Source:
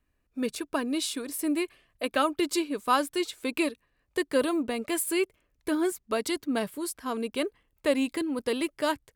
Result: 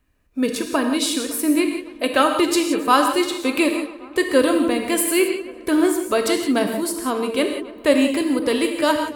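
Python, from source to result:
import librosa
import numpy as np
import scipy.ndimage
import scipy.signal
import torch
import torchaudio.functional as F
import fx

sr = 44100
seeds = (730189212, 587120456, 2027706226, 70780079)

y = fx.echo_filtered(x, sr, ms=280, feedback_pct=73, hz=2700.0, wet_db=-19)
y = fx.rev_gated(y, sr, seeds[0], gate_ms=200, shape='flat', drr_db=4.0)
y = y * 10.0 ** (8.0 / 20.0)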